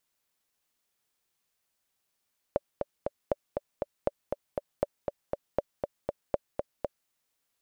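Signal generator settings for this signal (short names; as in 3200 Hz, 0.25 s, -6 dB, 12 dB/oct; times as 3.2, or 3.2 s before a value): metronome 238 bpm, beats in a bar 3, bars 6, 575 Hz, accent 4.5 dB -12 dBFS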